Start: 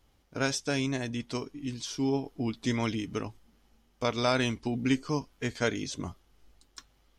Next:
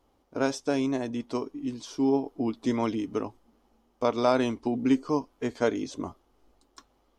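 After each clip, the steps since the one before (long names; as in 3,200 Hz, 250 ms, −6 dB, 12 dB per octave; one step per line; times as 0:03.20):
flat-topped bell 530 Hz +10.5 dB 2.7 octaves
level −5.5 dB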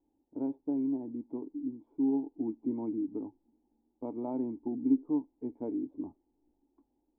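formant resonators in series u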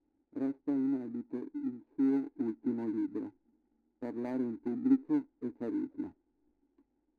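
running median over 41 samples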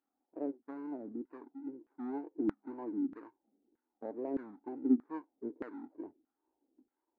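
auto-filter band-pass saw down 1.6 Hz 340–1,500 Hz
tape wow and flutter 150 cents
level +5.5 dB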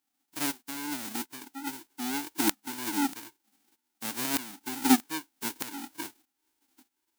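spectral envelope flattened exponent 0.1
level +6.5 dB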